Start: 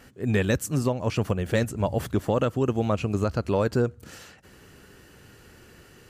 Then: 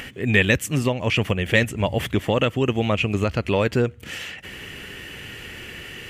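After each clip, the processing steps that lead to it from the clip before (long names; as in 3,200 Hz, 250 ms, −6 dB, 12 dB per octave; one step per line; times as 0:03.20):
flat-topped bell 2,500 Hz +12 dB 1.1 octaves
in parallel at −0.5 dB: upward compression, threshold −24 dBFS
on the sum: level −3 dB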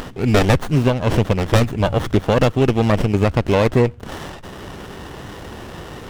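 windowed peak hold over 17 samples
level +6 dB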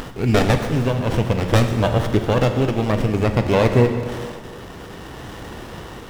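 amplitude tremolo 0.55 Hz, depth 33%
in parallel at −10 dB: bit reduction 6 bits
on the sum: dense smooth reverb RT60 2.1 s, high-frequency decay 0.85×, DRR 5.5 dB
level −3.5 dB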